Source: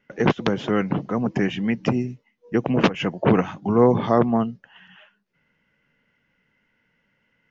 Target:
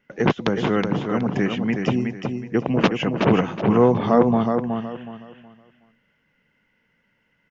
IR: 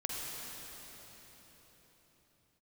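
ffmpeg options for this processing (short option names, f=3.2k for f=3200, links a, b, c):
-af "aecho=1:1:370|740|1110|1480:0.531|0.149|0.0416|0.0117"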